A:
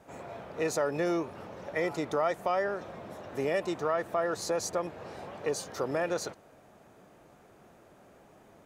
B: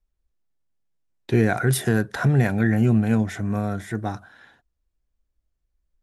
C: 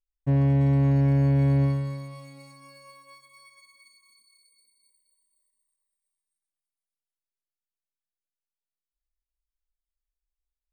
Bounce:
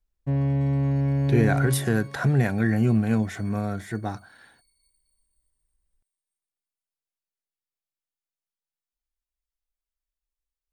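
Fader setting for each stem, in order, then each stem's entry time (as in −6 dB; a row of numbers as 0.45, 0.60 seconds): muted, −2.5 dB, −2.5 dB; muted, 0.00 s, 0.00 s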